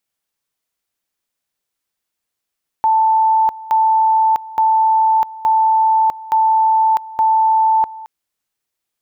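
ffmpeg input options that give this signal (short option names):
-f lavfi -i "aevalsrc='pow(10,(-10-19*gte(mod(t,0.87),0.65))/20)*sin(2*PI*883*t)':d=5.22:s=44100"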